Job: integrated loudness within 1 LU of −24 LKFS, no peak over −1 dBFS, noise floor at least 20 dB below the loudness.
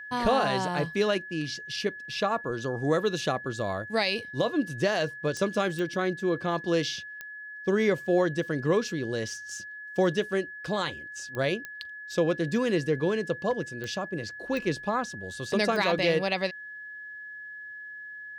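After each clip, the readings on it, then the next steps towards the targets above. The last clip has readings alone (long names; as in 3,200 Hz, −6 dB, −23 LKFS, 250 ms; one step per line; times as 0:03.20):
number of clicks 8; interfering tone 1,700 Hz; level of the tone −39 dBFS; integrated loudness −28.5 LKFS; sample peak −13.5 dBFS; target loudness −24.0 LKFS
→ click removal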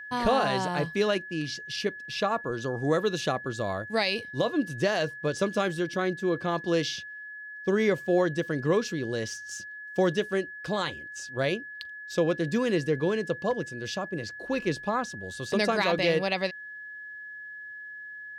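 number of clicks 0; interfering tone 1,700 Hz; level of the tone −39 dBFS
→ notch filter 1,700 Hz, Q 30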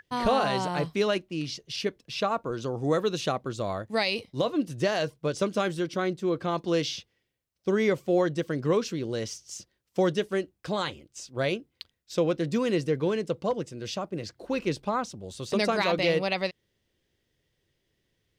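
interfering tone none found; integrated loudness −28.5 LKFS; sample peak −13.5 dBFS; target loudness −24.0 LKFS
→ level +4.5 dB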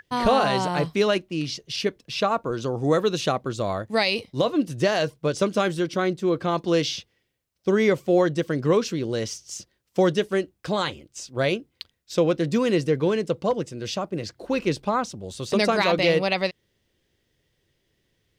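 integrated loudness −24.0 LKFS; sample peak −9.0 dBFS; background noise floor −73 dBFS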